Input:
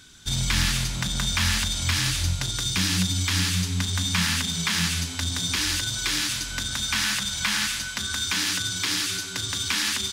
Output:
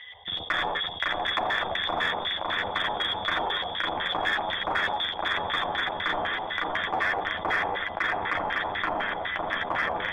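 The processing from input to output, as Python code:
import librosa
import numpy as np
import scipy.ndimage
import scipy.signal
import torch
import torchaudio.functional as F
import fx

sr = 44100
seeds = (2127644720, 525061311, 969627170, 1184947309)

p1 = fx.wiener(x, sr, points=41)
p2 = scipy.signal.sosfilt(scipy.signal.butter(2, 50.0, 'highpass', fs=sr, output='sos'), p1)
p3 = p2 + 10.0 ** (-4.0 / 20.0) * np.pad(p2, (int(84 * sr / 1000.0), 0))[:len(p2)]
p4 = fx.freq_invert(p3, sr, carrier_hz=3500)
p5 = fx.low_shelf(p4, sr, hz=270.0, db=-9.0)
p6 = fx.echo_feedback(p5, sr, ms=556, feedback_pct=55, wet_db=-4.0)
p7 = fx.filter_lfo_lowpass(p6, sr, shape='square', hz=4.0, low_hz=810.0, high_hz=1800.0, q=3.5)
p8 = fx.chorus_voices(p7, sr, voices=6, hz=0.6, base_ms=11, depth_ms=1.6, mix_pct=40)
p9 = np.clip(10.0 ** (26.0 / 20.0) * p8, -1.0, 1.0) / 10.0 ** (26.0 / 20.0)
p10 = p8 + (p9 * 10.0 ** (-8.0 / 20.0))
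p11 = fx.env_flatten(p10, sr, amount_pct=50)
y = p11 * 10.0 ** (-2.0 / 20.0)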